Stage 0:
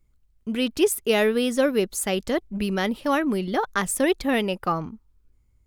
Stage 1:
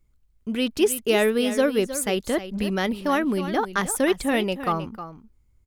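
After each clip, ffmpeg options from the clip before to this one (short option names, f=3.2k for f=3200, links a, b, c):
-af "aecho=1:1:313:0.251"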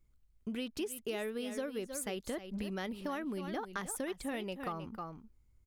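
-af "acompressor=threshold=-31dB:ratio=5,volume=-5.5dB"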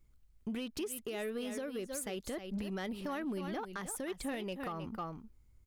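-af "alimiter=level_in=7.5dB:limit=-24dB:level=0:latency=1:release=197,volume=-7.5dB,asoftclip=type=tanh:threshold=-33.5dB,volume=3.5dB"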